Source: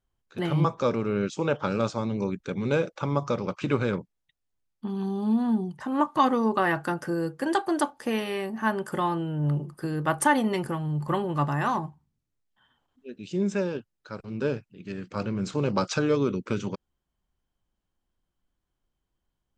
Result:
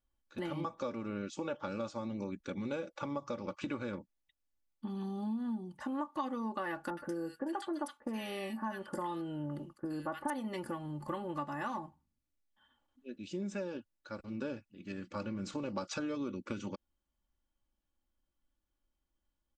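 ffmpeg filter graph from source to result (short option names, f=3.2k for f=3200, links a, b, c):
-filter_complex "[0:a]asettb=1/sr,asplit=3[a][b][c];[a]atrim=end=6.904[d];[b]atrim=start=6.9:end=10.3,asetpts=PTS-STARTPTS,afade=t=in:d=0.004:c=qsin,afade=t=out:st=3.396:d=0.004:c=qsin,agate=range=-10dB:threshold=-45dB:ratio=16:release=100:detection=peak,acrossover=split=1600[e][f];[f]adelay=70[g];[e][g]amix=inputs=2:normalize=0,atrim=end_sample=149940[h];[c]atrim=start=10.296[i];[d][h]acrossfade=d=0.004:c1=hsin:c2=qsin[j];[j][i]acrossfade=d=0.004:c1=qsin:c2=hsin,aecho=1:1:3.5:0.63,acompressor=threshold=-29dB:ratio=4,volume=-6.5dB"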